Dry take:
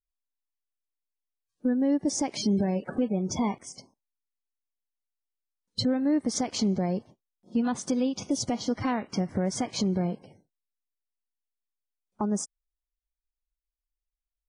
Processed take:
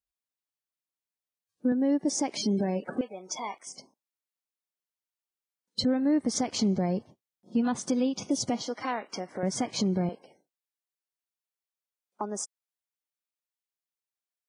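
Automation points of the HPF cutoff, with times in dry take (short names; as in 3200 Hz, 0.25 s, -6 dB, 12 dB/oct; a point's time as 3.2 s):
58 Hz
from 1.72 s 190 Hz
from 3.01 s 760 Hz
from 3.67 s 210 Hz
from 5.83 s 54 Hz
from 7.85 s 120 Hz
from 8.62 s 440 Hz
from 9.43 s 110 Hz
from 10.09 s 400 Hz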